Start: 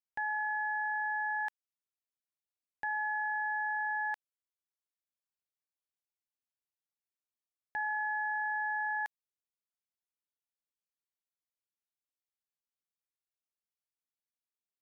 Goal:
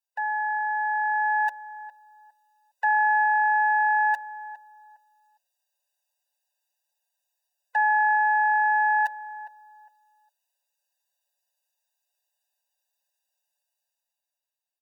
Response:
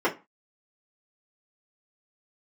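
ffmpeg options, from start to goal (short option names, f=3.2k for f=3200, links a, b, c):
-filter_complex "[0:a]bandreject=f=60:t=h:w=6,bandreject=f=120:t=h:w=6,bandreject=f=180:t=h:w=6,bandreject=f=240:t=h:w=6,bandreject=f=300:t=h:w=6,bandreject=f=360:t=h:w=6,bandreject=f=420:t=h:w=6,bandreject=f=480:t=h:w=6,bandreject=f=540:t=h:w=6,bandreject=f=600:t=h:w=6,acrossover=split=160|440[a][b][c];[c]dynaudnorm=f=190:g=13:m=10dB[d];[a][b][d]amix=inputs=3:normalize=0,equalizer=f=1.9k:w=7.9:g=-7.5,aecho=1:1:6.9:0.94,asplit=2[e][f];[f]alimiter=level_in=3.5dB:limit=-24dB:level=0:latency=1,volume=-3.5dB,volume=-0.5dB[g];[e][g]amix=inputs=2:normalize=0,acontrast=52,asplit=2[h][i];[i]adelay=408,lowpass=f=1k:p=1,volume=-13dB,asplit=2[j][k];[k]adelay=408,lowpass=f=1k:p=1,volume=0.29,asplit=2[l][m];[m]adelay=408,lowpass=f=1k:p=1,volume=0.29[n];[h][j][l][n]amix=inputs=4:normalize=0,afftfilt=real='re*eq(mod(floor(b*sr/1024/500),2),1)':imag='im*eq(mod(floor(b*sr/1024/500),2),1)':win_size=1024:overlap=0.75,volume=-7dB"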